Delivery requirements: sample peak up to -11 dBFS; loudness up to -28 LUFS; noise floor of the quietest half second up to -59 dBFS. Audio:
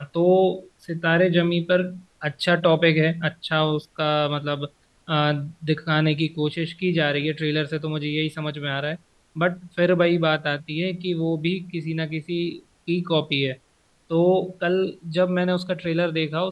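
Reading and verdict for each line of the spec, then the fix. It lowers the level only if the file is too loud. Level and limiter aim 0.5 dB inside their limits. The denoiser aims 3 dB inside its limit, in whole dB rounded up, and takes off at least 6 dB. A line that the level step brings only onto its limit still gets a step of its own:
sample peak -5.0 dBFS: fail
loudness -23.0 LUFS: fail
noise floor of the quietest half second -62 dBFS: OK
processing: gain -5.5 dB; limiter -11.5 dBFS

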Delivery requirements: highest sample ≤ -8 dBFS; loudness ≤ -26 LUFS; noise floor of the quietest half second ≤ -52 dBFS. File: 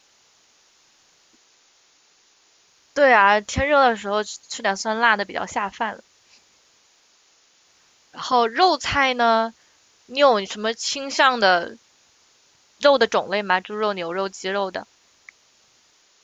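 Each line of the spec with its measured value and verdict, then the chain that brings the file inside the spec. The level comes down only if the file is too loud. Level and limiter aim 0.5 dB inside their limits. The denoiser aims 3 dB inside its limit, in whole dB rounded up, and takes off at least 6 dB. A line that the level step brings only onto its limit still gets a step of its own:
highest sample -3.0 dBFS: fail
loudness -20.0 LUFS: fail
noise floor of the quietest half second -59 dBFS: OK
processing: gain -6.5 dB

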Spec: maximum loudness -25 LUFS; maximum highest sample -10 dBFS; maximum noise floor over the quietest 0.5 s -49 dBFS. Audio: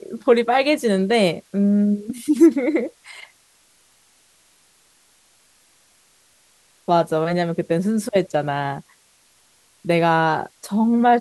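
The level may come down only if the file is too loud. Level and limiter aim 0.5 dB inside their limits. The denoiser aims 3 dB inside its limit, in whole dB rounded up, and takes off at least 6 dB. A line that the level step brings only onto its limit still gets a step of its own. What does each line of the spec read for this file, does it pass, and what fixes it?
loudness -19.5 LUFS: fail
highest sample -4.0 dBFS: fail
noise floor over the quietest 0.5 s -58 dBFS: OK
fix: gain -6 dB; limiter -10.5 dBFS

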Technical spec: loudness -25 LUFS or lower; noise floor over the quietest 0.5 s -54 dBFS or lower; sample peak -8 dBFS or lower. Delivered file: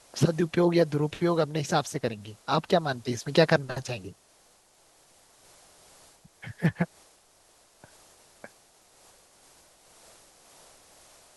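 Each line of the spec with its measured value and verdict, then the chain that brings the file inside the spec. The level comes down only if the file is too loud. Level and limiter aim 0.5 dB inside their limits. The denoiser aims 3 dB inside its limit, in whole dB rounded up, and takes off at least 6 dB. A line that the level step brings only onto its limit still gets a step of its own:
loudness -27.0 LUFS: OK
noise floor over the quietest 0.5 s -61 dBFS: OK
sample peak -6.0 dBFS: fail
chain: limiter -8.5 dBFS

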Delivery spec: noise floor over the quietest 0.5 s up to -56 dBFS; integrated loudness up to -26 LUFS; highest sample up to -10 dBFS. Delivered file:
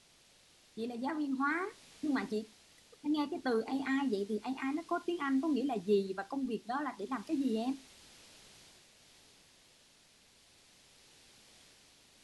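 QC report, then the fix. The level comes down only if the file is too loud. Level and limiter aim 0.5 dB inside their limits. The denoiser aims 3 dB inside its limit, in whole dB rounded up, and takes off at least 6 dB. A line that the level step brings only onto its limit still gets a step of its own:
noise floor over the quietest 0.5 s -65 dBFS: OK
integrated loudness -35.5 LUFS: OK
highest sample -19.5 dBFS: OK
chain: none

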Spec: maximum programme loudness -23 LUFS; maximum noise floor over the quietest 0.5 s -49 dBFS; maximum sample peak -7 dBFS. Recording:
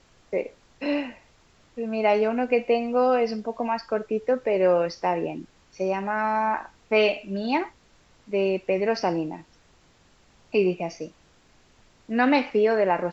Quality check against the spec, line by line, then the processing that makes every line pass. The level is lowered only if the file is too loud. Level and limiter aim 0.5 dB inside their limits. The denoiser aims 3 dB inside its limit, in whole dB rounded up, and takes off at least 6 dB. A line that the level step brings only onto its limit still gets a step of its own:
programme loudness -25.0 LUFS: OK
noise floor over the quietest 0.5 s -59 dBFS: OK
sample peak -8.0 dBFS: OK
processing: none

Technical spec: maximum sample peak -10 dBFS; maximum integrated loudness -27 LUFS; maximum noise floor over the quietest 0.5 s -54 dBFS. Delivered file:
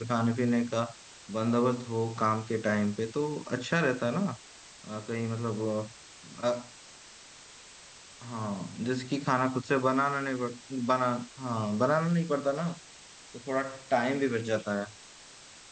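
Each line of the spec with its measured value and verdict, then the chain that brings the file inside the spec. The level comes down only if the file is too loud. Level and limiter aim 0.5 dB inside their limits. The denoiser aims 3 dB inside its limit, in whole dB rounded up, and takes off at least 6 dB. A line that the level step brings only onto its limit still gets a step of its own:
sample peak -11.5 dBFS: OK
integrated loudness -30.5 LUFS: OK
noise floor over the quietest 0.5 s -51 dBFS: fail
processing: denoiser 6 dB, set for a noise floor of -51 dBFS

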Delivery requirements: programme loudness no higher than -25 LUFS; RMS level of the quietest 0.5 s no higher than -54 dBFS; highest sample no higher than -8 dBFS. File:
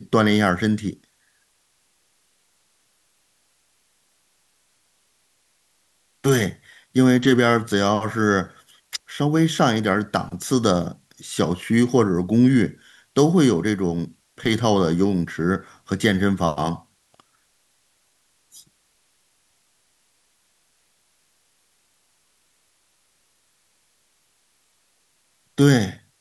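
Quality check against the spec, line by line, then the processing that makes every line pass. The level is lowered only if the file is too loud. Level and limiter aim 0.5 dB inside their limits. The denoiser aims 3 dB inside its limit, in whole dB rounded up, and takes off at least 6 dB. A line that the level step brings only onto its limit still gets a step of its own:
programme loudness -20.5 LUFS: fail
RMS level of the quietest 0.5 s -65 dBFS: OK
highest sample -3.5 dBFS: fail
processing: gain -5 dB

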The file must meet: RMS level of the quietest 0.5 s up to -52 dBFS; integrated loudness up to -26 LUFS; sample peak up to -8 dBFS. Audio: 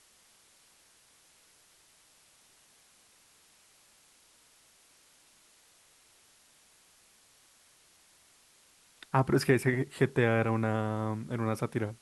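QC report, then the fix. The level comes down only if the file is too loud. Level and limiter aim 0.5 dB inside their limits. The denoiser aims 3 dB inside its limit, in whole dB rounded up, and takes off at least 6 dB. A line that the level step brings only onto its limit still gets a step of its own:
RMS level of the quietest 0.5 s -63 dBFS: OK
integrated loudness -29.5 LUFS: OK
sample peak -10.5 dBFS: OK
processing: none

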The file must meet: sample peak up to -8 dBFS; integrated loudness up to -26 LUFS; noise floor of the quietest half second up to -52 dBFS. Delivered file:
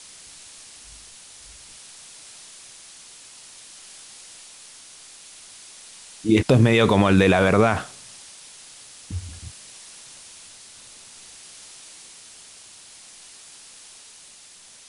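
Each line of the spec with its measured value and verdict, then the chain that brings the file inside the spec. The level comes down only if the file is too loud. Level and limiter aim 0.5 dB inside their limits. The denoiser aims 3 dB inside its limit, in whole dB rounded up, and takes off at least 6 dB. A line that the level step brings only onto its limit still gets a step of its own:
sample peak -5.5 dBFS: fail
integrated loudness -19.0 LUFS: fail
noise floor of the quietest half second -48 dBFS: fail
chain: gain -7.5 dB

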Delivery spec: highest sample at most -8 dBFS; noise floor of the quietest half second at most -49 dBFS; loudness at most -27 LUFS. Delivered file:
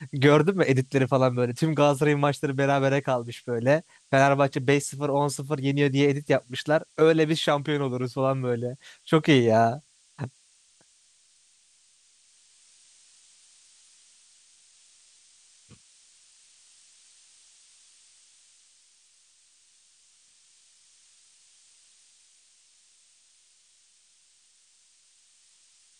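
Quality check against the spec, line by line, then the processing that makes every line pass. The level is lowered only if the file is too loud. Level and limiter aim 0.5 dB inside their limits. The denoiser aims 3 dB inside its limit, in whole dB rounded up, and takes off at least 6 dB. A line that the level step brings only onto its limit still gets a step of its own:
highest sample -4.5 dBFS: fail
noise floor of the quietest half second -62 dBFS: OK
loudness -23.5 LUFS: fail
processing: gain -4 dB

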